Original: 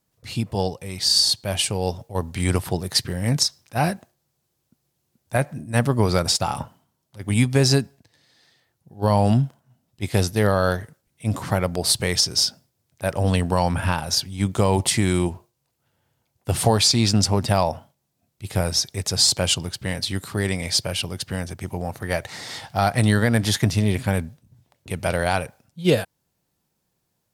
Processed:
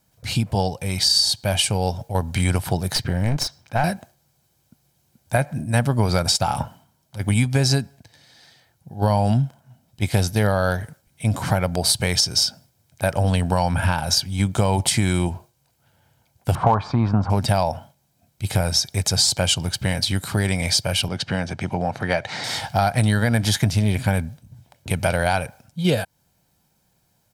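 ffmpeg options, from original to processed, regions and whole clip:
ffmpeg -i in.wav -filter_complex "[0:a]asettb=1/sr,asplit=3[link_01][link_02][link_03];[link_01]atrim=end=2.954[link_04];[link_02]atrim=start=2.95:end=3.84,asetpts=PTS-STARTPTS,afade=type=in:duration=0.004:curve=qsin,afade=type=out:start_time=0.886:duration=0.004:curve=qsin,equalizer=frequency=11000:width_type=o:width=2:gain=-11.5,aeval=exprs='clip(val(0),-1,0.0335)':channel_layout=same[link_05];[link_03]atrim=start=3.836[link_06];[link_04][link_05]acrossfade=duration=0.004:curve1=hsin:curve2=qsin[link_07];[link_07][link_06]acrossfade=duration=0.004:curve1=qsin:curve2=hsin,asettb=1/sr,asplit=3[link_08][link_09][link_10];[link_08]atrim=end=16.554[link_11];[link_09]atrim=start=16.55:end=17.3,asetpts=PTS-STARTPTS,afade=type=in:duration=0.004:curve=qsin,afade=type=out:start_time=0.746:duration=0.004:curve=qsin,lowpass=frequency=1100:width_type=q:width=6.2,aeval=exprs='clip(val(0),-1,0.355)':channel_layout=same[link_12];[link_10]atrim=start=17.296[link_13];[link_11][link_12]acrossfade=duration=0.004:curve1=hsin:curve2=qsin[link_14];[link_14][link_13]acrossfade=duration=0.004:curve1=qsin:curve2=hsin,asettb=1/sr,asplit=3[link_15][link_16][link_17];[link_15]atrim=end=21.084[link_18];[link_16]atrim=start=21.08:end=22.44,asetpts=PTS-STARTPTS,afade=type=in:duration=0.004:curve=qsin,afade=type=out:start_time=1.356:duration=0.004:curve=qsin,acompressor=mode=upward:threshold=-32dB:ratio=2.5:attack=3.2:release=140:knee=2.83:detection=peak,highpass=130,lowpass=4600[link_19];[link_17]atrim=start=22.436[link_20];[link_18][link_19]acrossfade=duration=0.004:curve1=hsin:curve2=qsin[link_21];[link_21][link_20]acrossfade=duration=0.004:curve1=qsin:curve2=hsin,aecho=1:1:1.3:0.37,acompressor=threshold=-27dB:ratio=2.5,volume=7.5dB" out.wav

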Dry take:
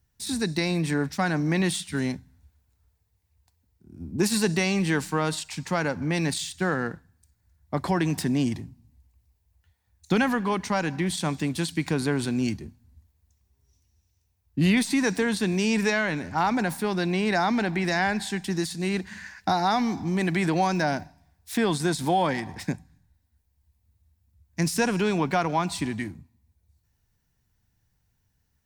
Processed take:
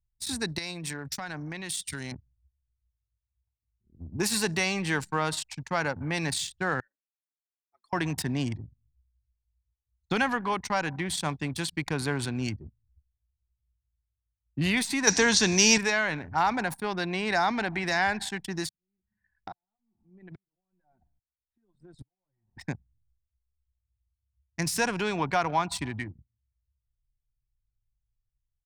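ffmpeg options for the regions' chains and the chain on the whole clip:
ffmpeg -i in.wav -filter_complex "[0:a]asettb=1/sr,asplit=3[link_01][link_02][link_03];[link_01]atrim=end=0.584[link_04];[link_02]atrim=start=0.58:end=2.12,asetpts=PTS-STARTPTS,afade=type=in:duration=0.004:curve=qsin,afade=type=out:start_time=1.536:duration=0.004:curve=qsin,highshelf=frequency=3100:gain=11.5,acompressor=threshold=-28dB:ratio=12:attack=3.2:release=140:knee=1:detection=peak[link_05];[link_03]atrim=start=2.116[link_06];[link_04][link_05]acrossfade=duration=0.004:curve1=hsin:curve2=qsin[link_07];[link_07][link_06]acrossfade=duration=0.004:curve1=qsin:curve2=hsin,asettb=1/sr,asplit=3[link_08][link_09][link_10];[link_08]atrim=end=6.804[link_11];[link_09]atrim=start=6.8:end=7.93,asetpts=PTS-STARTPTS,afade=type=in:duration=0.004:curve=qsin,afade=type=out:start_time=1.126:duration=0.004:curve=qsin,aderivative,afreqshift=96[link_12];[link_10]atrim=start=7.926[link_13];[link_11][link_12]acrossfade=duration=0.004:curve1=hsin:curve2=qsin[link_14];[link_14][link_13]acrossfade=duration=0.004:curve1=qsin:curve2=hsin,asettb=1/sr,asplit=3[link_15][link_16][link_17];[link_15]atrim=end=15.074[link_18];[link_16]atrim=start=15.07:end=15.78,asetpts=PTS-STARTPTS,afade=type=in:duration=0.004:curve=qsin,afade=type=out:start_time=0.706:duration=0.004:curve=qsin,lowpass=frequency=6100:width_type=q:width=4.4,acontrast=46[link_19];[link_17]atrim=start=15.776[link_20];[link_18][link_19]acrossfade=duration=0.004:curve1=hsin:curve2=qsin[link_21];[link_21][link_20]acrossfade=duration=0.004:curve1=qsin:curve2=hsin,asettb=1/sr,asplit=3[link_22][link_23][link_24];[link_22]atrim=end=18.694[link_25];[link_23]atrim=start=18.69:end=22.57,asetpts=PTS-STARTPTS,afade=type=in:duration=0.004:curve=qsin,afade=type=out:start_time=3.876:duration=0.004:curve=qsin,acompressor=threshold=-33dB:ratio=5:attack=3.2:release=140:knee=1:detection=peak,aeval=exprs='val(0)*pow(10,-31*if(lt(mod(-1.2*n/s,1),2*abs(-1.2)/1000),1-mod(-1.2*n/s,1)/(2*abs(-1.2)/1000),(mod(-1.2*n/s,1)-2*abs(-1.2)/1000)/(1-2*abs(-1.2)/1000))/20)':channel_layout=same[link_26];[link_24]atrim=start=22.566[link_27];[link_25][link_26]acrossfade=duration=0.004:curve1=hsin:curve2=qsin[link_28];[link_28][link_27]acrossfade=duration=0.004:curve1=qsin:curve2=hsin,anlmdn=6.31,firequalizer=gain_entry='entry(120,0);entry(180,-8);entry(820,0)':delay=0.05:min_phase=1" out.wav

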